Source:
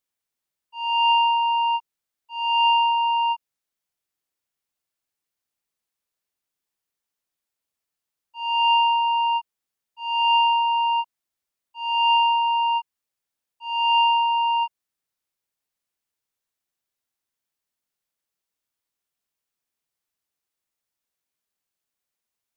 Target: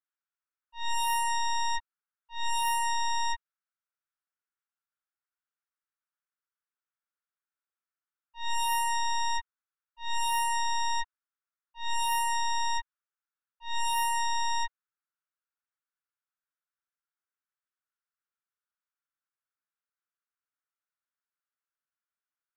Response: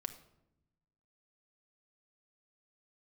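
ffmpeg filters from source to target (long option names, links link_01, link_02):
-af "bandpass=frequency=1400:width_type=q:width=3.9:csg=0,aeval=exprs='0.0562*(cos(1*acos(clip(val(0)/0.0562,-1,1)))-cos(1*PI/2))+0.00126*(cos(5*acos(clip(val(0)/0.0562,-1,1)))-cos(5*PI/2))+0.0251*(cos(8*acos(clip(val(0)/0.0562,-1,1)))-cos(8*PI/2))':channel_layout=same"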